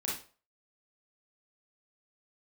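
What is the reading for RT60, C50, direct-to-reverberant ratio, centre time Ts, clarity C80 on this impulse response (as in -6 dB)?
0.40 s, 2.5 dB, -5.5 dB, 42 ms, 10.0 dB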